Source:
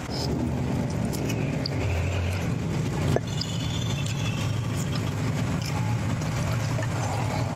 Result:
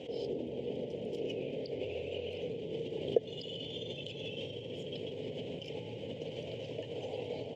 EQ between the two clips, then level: double band-pass 1200 Hz, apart 2.7 oct; bell 1500 Hz -9 dB 0.68 oct; high shelf 2300 Hz -11.5 dB; +5.5 dB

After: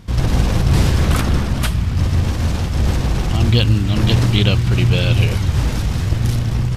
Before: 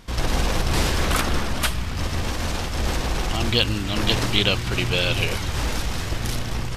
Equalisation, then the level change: bell 110 Hz +14.5 dB 2.4 oct; -1.0 dB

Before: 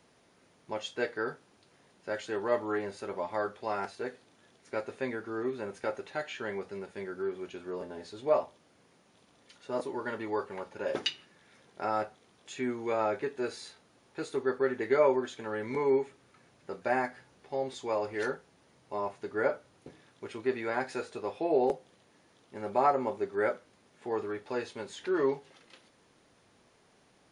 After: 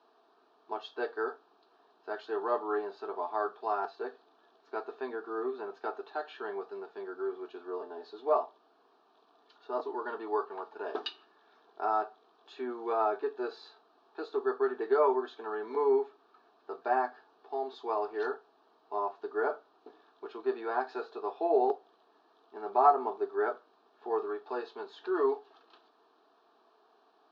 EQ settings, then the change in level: air absorption 130 m; speaker cabinet 400–4800 Hz, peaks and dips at 450 Hz +9 dB, 670 Hz +9 dB, 1200 Hz +6 dB, 1800 Hz +9 dB, 4100 Hz +4 dB; fixed phaser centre 540 Hz, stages 6; 0.0 dB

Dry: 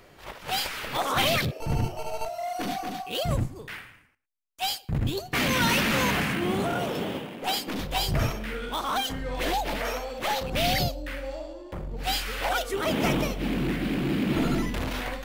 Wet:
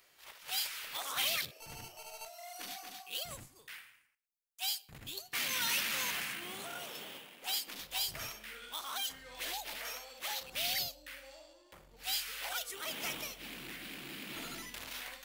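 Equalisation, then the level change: pre-emphasis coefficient 0.97; high shelf 5600 Hz -7 dB; +1.5 dB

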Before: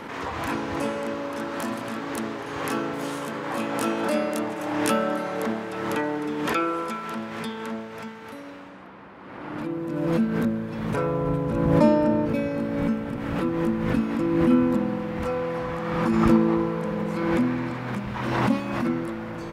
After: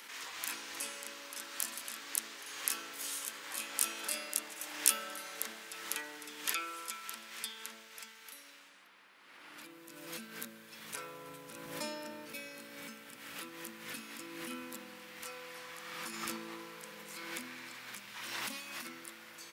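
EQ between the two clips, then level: differentiator; low shelf 170 Hz -7 dB; bell 790 Hz -7.5 dB 1.9 oct; +4.5 dB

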